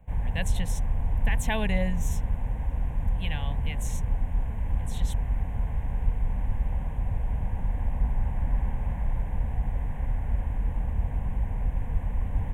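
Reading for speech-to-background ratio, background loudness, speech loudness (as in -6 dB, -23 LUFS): -4.5 dB, -31.0 LUFS, -35.5 LUFS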